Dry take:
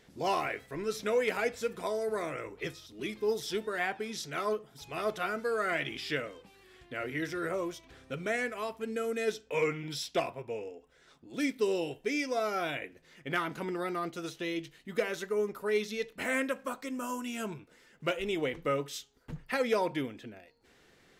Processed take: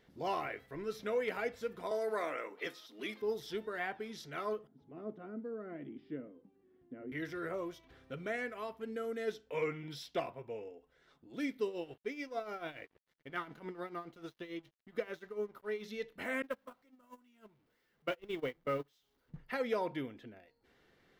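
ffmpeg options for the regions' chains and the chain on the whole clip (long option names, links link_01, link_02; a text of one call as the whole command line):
ffmpeg -i in.wav -filter_complex "[0:a]asettb=1/sr,asplit=3[link_01][link_02][link_03];[link_01]atrim=end=1.914[link_04];[link_02]atrim=start=1.91:end=3.22,asetpts=PTS-STARTPTS,afade=type=in:duration=0.004:curve=qsin,afade=type=out:start_time=1.306:duration=0.004:curve=qsin,highpass=frequency=250:width=0.5412,highpass=frequency=250:width=1.3066,equalizer=frequency=360:width=2:gain=-7,acontrast=55[link_05];[link_03]atrim=start=3.216[link_06];[link_04][link_05]acrossfade=duration=0.004:curve1=hsin:curve2=qsin[link_07];[link_07][link_06]acrossfade=duration=0.004:curve1=qsin:curve2=hsin,asettb=1/sr,asplit=3[link_08][link_09][link_10];[link_08]atrim=end=4.674[link_11];[link_09]atrim=start=4.67:end=7.12,asetpts=PTS-STARTPTS,afade=type=in:duration=0.004:curve=qsin,afade=type=out:start_time=2.446:duration=0.004:curve=qsin,acontrast=69,bandpass=frequency=250:width_type=q:width=2.9[link_12];[link_10]atrim=start=7.116[link_13];[link_11][link_12]acrossfade=duration=0.004:curve1=hsin:curve2=qsin[link_14];[link_14][link_13]acrossfade=duration=0.004:curve1=qsin:curve2=hsin,asettb=1/sr,asplit=3[link_15][link_16][link_17];[link_15]atrim=end=11.654[link_18];[link_16]atrim=start=11.65:end=15.84,asetpts=PTS-STARTPTS,afade=type=in:duration=0.004:curve=qsin,afade=type=out:start_time=4.186:duration=0.004:curve=qsin,highshelf=frequency=7900:gain=-4,tremolo=f=6.9:d=0.72,aeval=exprs='sgn(val(0))*max(abs(val(0))-0.00133,0)':channel_layout=same[link_19];[link_17]atrim=start=15.836[link_20];[link_18][link_19]acrossfade=duration=0.004:curve1=hsin:curve2=qsin[link_21];[link_21][link_20]acrossfade=duration=0.004:curve1=qsin:curve2=hsin,asettb=1/sr,asplit=3[link_22][link_23][link_24];[link_22]atrim=end=16.424[link_25];[link_23]atrim=start=16.42:end=19.34,asetpts=PTS-STARTPTS,afade=type=in:duration=0.004:curve=qsin,afade=type=out:start_time=2.916:duration=0.004:curve=qsin,aeval=exprs='val(0)+0.5*0.0119*sgn(val(0))':channel_layout=same,agate=range=-27dB:threshold=-31dB:ratio=16:release=100:detection=peak[link_26];[link_24]atrim=start=19.336[link_27];[link_25][link_26]acrossfade=duration=0.004:curve1=hsin:curve2=qsin[link_28];[link_28][link_27]acrossfade=duration=0.004:curve1=qsin:curve2=hsin,equalizer=frequency=8000:width=0.9:gain=-11,bandreject=frequency=2500:width=16,volume=-5.5dB" out.wav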